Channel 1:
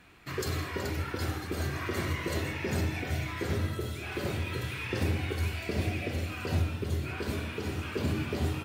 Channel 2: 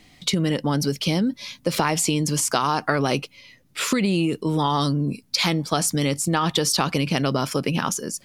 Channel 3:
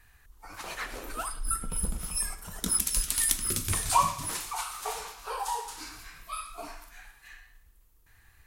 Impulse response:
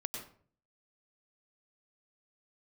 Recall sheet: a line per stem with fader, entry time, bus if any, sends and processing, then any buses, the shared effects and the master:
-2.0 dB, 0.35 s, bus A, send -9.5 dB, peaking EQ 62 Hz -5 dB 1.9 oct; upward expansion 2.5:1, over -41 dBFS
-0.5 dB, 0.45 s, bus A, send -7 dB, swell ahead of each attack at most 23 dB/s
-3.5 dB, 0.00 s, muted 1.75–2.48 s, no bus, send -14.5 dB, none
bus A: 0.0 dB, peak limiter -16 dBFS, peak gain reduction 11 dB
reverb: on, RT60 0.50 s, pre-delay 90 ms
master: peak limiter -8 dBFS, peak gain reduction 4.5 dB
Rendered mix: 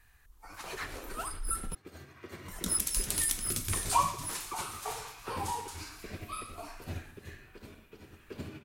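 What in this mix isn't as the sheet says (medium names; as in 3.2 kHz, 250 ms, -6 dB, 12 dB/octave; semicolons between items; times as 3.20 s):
stem 1 -2.0 dB -> -9.0 dB; stem 2: muted; stem 3: send off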